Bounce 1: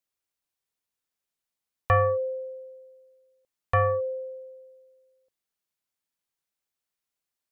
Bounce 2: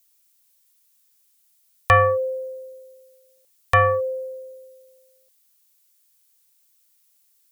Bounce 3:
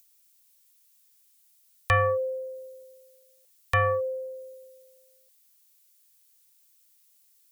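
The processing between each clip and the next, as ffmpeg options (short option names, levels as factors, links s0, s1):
-af "crystalizer=i=8:c=0,volume=1.41"
-filter_complex "[0:a]acrossover=split=480|1400[s0][s1][s2];[s1]alimiter=limit=0.112:level=0:latency=1[s3];[s2]acompressor=mode=upward:threshold=0.00282:ratio=2.5[s4];[s0][s3][s4]amix=inputs=3:normalize=0,volume=0.596"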